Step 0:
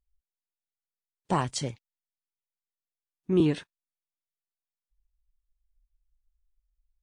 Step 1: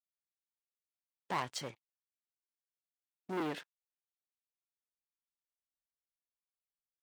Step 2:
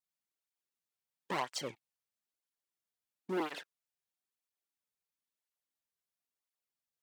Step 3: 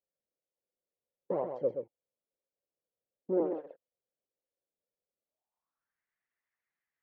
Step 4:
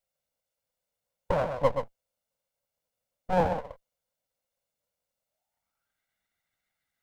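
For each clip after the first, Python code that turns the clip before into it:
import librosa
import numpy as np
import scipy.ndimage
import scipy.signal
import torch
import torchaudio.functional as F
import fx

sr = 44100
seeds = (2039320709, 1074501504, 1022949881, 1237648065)

y1 = fx.lowpass(x, sr, hz=1500.0, slope=6)
y1 = fx.leveller(y1, sr, passes=3)
y1 = fx.highpass(y1, sr, hz=1100.0, slope=6)
y1 = y1 * 10.0 ** (-8.0 / 20.0)
y2 = fx.flanger_cancel(y1, sr, hz=1.0, depth_ms=3.7)
y2 = y2 * 10.0 ** (4.5 / 20.0)
y3 = fx.filter_sweep_lowpass(y2, sr, from_hz=530.0, to_hz=1900.0, start_s=5.2, end_s=5.99, q=5.3)
y3 = y3 + 10.0 ** (-7.0 / 20.0) * np.pad(y3, (int(127 * sr / 1000.0), 0))[:len(y3)]
y4 = fx.lower_of_two(y3, sr, delay_ms=1.4)
y4 = y4 * 10.0 ** (8.5 / 20.0)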